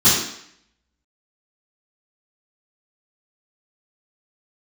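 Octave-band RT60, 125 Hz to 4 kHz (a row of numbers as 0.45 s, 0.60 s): 0.55 s, 0.70 s, 0.65 s, 0.70 s, 0.75 s, 0.70 s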